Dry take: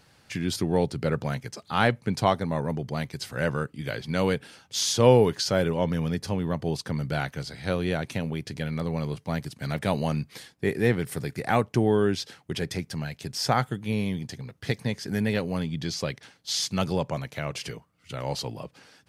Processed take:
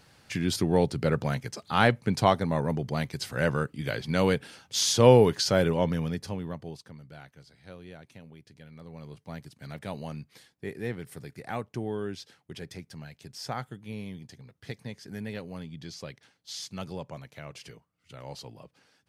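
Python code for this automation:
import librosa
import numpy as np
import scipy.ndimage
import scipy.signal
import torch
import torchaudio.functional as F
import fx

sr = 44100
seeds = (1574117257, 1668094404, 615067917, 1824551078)

y = fx.gain(x, sr, db=fx.line((5.76, 0.5), (6.5, -8.0), (7.01, -19.0), (8.69, -19.0), (9.27, -11.0)))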